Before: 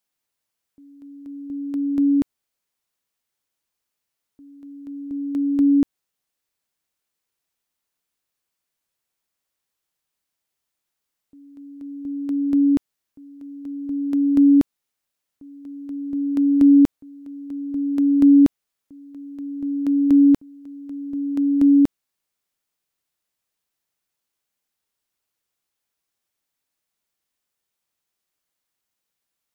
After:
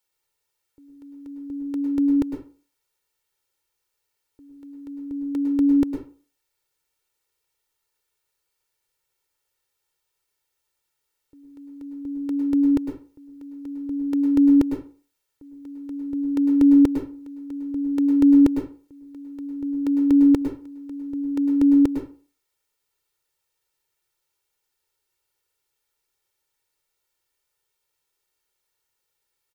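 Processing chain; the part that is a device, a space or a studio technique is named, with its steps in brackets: microphone above a desk (comb 2.2 ms, depth 83%; reverb RT60 0.40 s, pre-delay 0.101 s, DRR 4 dB)

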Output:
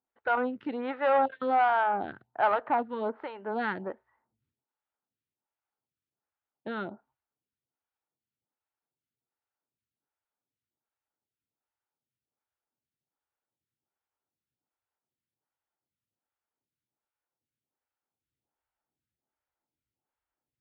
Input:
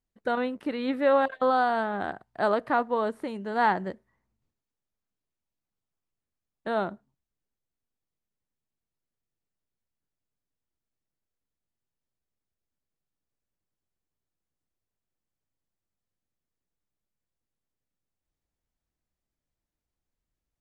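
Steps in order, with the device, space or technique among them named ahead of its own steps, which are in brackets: vibe pedal into a guitar amplifier (photocell phaser 1.3 Hz; tube stage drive 22 dB, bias 0.3; speaker cabinet 88–3500 Hz, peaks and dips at 120 Hz +3 dB, 180 Hz -6 dB, 860 Hz +9 dB, 1400 Hz +7 dB); gain +1 dB

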